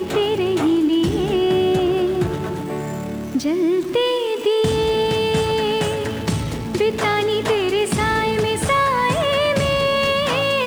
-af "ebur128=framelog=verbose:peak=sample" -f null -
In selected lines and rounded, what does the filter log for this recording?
Integrated loudness:
  I:         -19.2 LUFS
  Threshold: -29.2 LUFS
Loudness range:
  LRA:         2.2 LU
  Threshold: -39.6 LUFS
  LRA low:   -20.5 LUFS
  LRA high:  -18.3 LUFS
Sample peak:
  Peak:       -7.7 dBFS